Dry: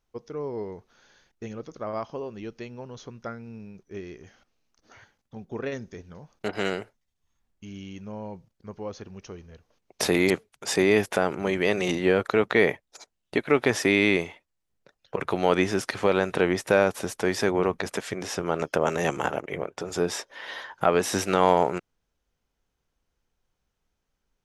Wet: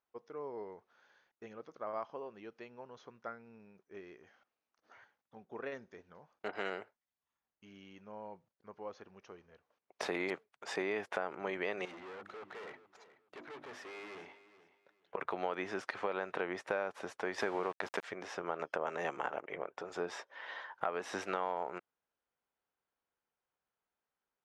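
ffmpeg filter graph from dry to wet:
-filter_complex "[0:a]asettb=1/sr,asplit=3[a][b][c];[a]atrim=end=11.854[d];[b]atrim=start=11.85:end=15.15,asetpts=PTS-STARTPTS,afade=t=in:d=0.004:c=qsin,afade=t=out:st=3.296:d=0.004:c=qsin,bandreject=f=50:t=h:w=6,bandreject=f=100:t=h:w=6,bandreject=f=150:t=h:w=6,bandreject=f=200:t=h:w=6,bandreject=f=250:t=h:w=6,bandreject=f=300:t=h:w=6,bandreject=f=350:t=h:w=6,aeval=exprs='(tanh(63.1*val(0)+0.55)-tanh(0.55))/63.1':c=same,aecho=1:1:425|850:0.158|0.038,atrim=end_sample=145530[e];[c]atrim=start=15.146[f];[d][e]acrossfade=d=0.004:c1=hsin:c2=qsin[g];[g][f]acrossfade=d=0.004:c1=qsin:c2=hsin,asettb=1/sr,asplit=3[h][i][j];[h]atrim=end=17.384[k];[i]atrim=start=17.38:end=18.04,asetpts=PTS-STARTPTS,afade=t=in:d=0.004:c=qsin,afade=t=out:st=0.656:d=0.004:c=qsin,acontrast=38,aeval=exprs='val(0)*gte(abs(val(0)),0.0398)':c=same[l];[j]atrim=start=18.036[m];[k][l]acrossfade=d=0.004:c1=hsin:c2=qsin[n];[n][m]acrossfade=d=0.004:c1=qsin:c2=hsin,lowpass=1.1k,aderivative,acompressor=threshold=-45dB:ratio=6,volume=13.5dB"

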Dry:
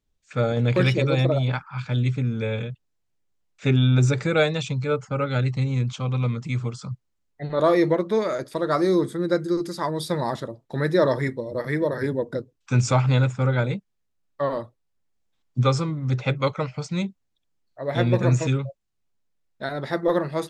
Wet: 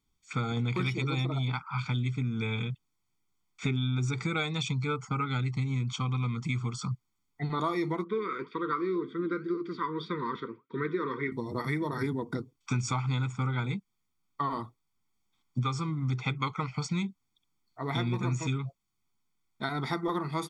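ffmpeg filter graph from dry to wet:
-filter_complex "[0:a]asettb=1/sr,asplit=3[a][b][c];[a]atrim=end=8.044[d];[b]atrim=start=8.04:end=11.32,asetpts=PTS-STARTPTS,afade=t=in:d=0.004:c=qsin,afade=t=out:st=3.276:d=0.004:c=qsin,flanger=delay=3.6:depth=7.1:regen=82:speed=1.9:shape=sinusoidal,asuperstop=centerf=730:order=12:qfactor=2,highpass=210,equalizer=f=430:t=q:w=4:g=7,equalizer=f=830:t=q:w=4:g=-5,equalizer=f=1.6k:t=q:w=4:g=5,lowpass=f=3.2k:w=0.5412,lowpass=f=3.2k:w=1.3066[e];[c]atrim=start=11.316[f];[d][e]acrossfade=d=0.004:c1=hsin:c2=qsin[g];[g][f]acrossfade=d=0.004:c1=qsin:c2=hsin,lowshelf=f=100:g=-11.5,aecho=1:1:0.9:0.99,acompressor=threshold=-28dB:ratio=5"

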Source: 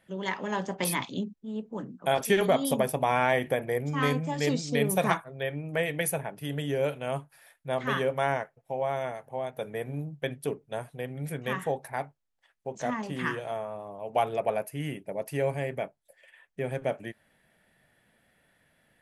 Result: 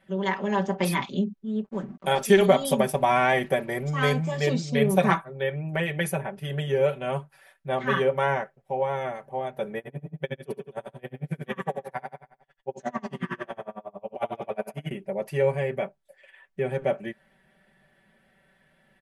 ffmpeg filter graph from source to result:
-filter_complex "[0:a]asettb=1/sr,asplit=3[a][b][c];[a]atrim=end=1.644[d];[b]atrim=start=1.64:end=4.37,asetpts=PTS-STARTPTS,afade=t=in:d=0.004:c=qsin,afade=t=out:st=2.726:d=0.004:c=qsin,equalizer=f=8.2k:w=0.64:g=7.5,aeval=exprs='sgn(val(0))*max(abs(val(0))-0.00224,0)':c=same[e];[c]atrim=start=4.366[f];[d][e]acrossfade=d=0.004:c1=hsin:c2=qsin[g];[g][f]acrossfade=d=0.004:c1=qsin:c2=hsin,asettb=1/sr,asplit=3[h][i][j];[h]atrim=end=9.784[k];[i]atrim=start=9.78:end=14.91,asetpts=PTS-STARTPTS,afade=t=in:d=0.004:c=qsin,afade=t=out:st=5.126:d=0.004:c=qsin,aecho=1:1:70|140|210|280|350|420|490:0.501|0.281|0.157|0.088|0.0493|0.0276|0.0155,atrim=end_sample=226233,aeval=exprs='val(0)*pow(10,-32*(0.5-0.5*cos(2*PI*11*n/s))/20)':c=same[l];[j]atrim=start=14.906[m];[k][l]acrossfade=d=0.004:c1=hsin:c2=qsin[n];[n][m]acrossfade=d=0.004:c1=qsin:c2=hsin,lowpass=f=3.2k:p=1,aecho=1:1:5.2:0.98,volume=1.5dB"

